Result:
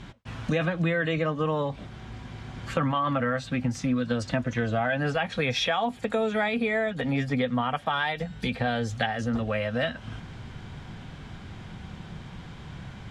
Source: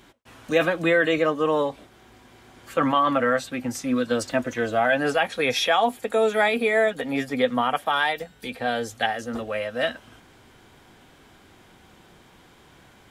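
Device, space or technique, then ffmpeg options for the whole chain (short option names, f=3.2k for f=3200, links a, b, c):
jukebox: -af "lowpass=5.5k,lowshelf=f=230:t=q:w=1.5:g=10,acompressor=threshold=-31dB:ratio=4,volume=6dB"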